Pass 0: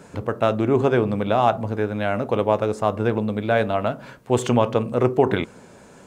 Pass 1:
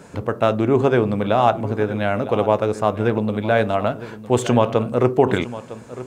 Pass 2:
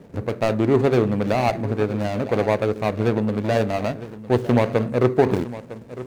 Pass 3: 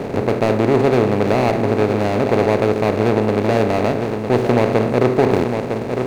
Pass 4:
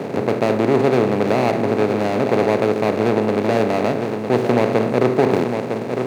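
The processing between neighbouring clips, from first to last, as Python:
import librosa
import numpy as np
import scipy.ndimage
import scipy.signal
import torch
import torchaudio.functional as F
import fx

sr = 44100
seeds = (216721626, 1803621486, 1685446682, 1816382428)

y1 = x + 10.0 ** (-15.5 / 20.0) * np.pad(x, (int(956 * sr / 1000.0), 0))[:len(x)]
y1 = F.gain(torch.from_numpy(y1), 2.0).numpy()
y2 = scipy.signal.medfilt(y1, 41)
y3 = fx.bin_compress(y2, sr, power=0.4)
y3 = F.gain(torch.from_numpy(y3), -1.5).numpy()
y4 = scipy.signal.sosfilt(scipy.signal.butter(4, 120.0, 'highpass', fs=sr, output='sos'), y3)
y4 = F.gain(torch.from_numpy(y4), -1.0).numpy()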